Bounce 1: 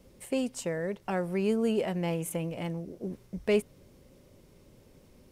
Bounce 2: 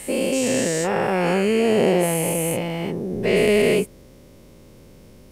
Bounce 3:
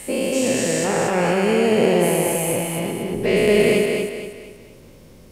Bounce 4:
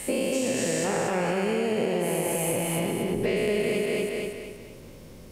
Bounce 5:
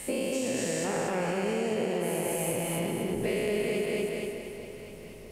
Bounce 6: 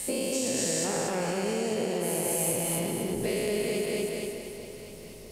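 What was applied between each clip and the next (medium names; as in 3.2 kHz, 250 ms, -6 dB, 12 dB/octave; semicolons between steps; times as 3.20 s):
every event in the spectrogram widened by 480 ms; trim +4 dB
thinning echo 236 ms, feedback 39%, high-pass 150 Hz, level -3.5 dB
compression, threshold -23 dBFS, peak gain reduction 11.5 dB
echo whose repeats swap between lows and highs 447 ms, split 860 Hz, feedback 65%, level -10.5 dB; trim -4 dB
resonant high shelf 3.3 kHz +6 dB, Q 1.5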